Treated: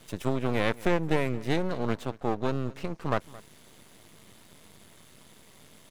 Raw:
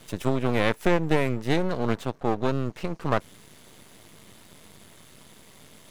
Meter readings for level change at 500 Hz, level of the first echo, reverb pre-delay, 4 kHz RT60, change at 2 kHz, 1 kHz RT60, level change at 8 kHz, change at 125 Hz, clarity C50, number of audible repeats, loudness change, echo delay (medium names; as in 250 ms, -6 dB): -3.5 dB, -20.5 dB, no reverb, no reverb, -3.5 dB, no reverb, -3.5 dB, -3.5 dB, no reverb, 1, -3.5 dB, 220 ms